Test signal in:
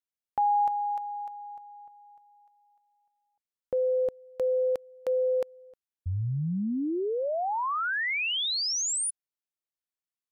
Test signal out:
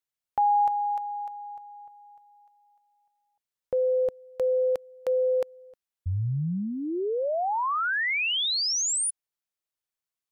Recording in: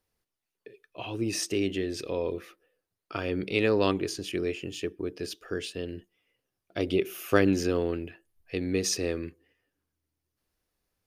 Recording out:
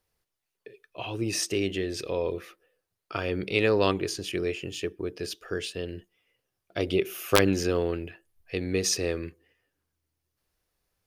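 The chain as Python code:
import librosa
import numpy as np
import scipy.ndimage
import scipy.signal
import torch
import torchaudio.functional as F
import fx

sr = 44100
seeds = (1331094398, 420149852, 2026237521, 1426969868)

y = fx.peak_eq(x, sr, hz=260.0, db=-5.5, octaves=0.72)
y = (np.mod(10.0 ** (9.5 / 20.0) * y + 1.0, 2.0) - 1.0) / 10.0 ** (9.5 / 20.0)
y = y * 10.0 ** (2.5 / 20.0)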